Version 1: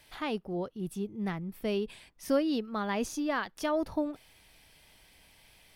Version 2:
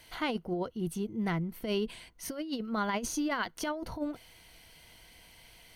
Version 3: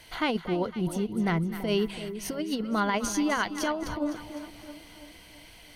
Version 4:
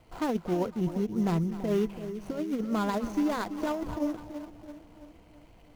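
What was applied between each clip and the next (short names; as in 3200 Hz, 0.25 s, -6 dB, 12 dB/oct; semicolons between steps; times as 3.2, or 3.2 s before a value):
ripple EQ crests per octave 1.9, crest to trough 7 dB; negative-ratio compressor -32 dBFS, ratio -0.5; gain +1 dB
high shelf 12000 Hz -6.5 dB; split-band echo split 860 Hz, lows 0.333 s, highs 0.254 s, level -11 dB; gain +5 dB
median filter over 25 samples; in parallel at -9 dB: sample-rate reducer 6000 Hz, jitter 20%; on the sum: gain -2.5 dB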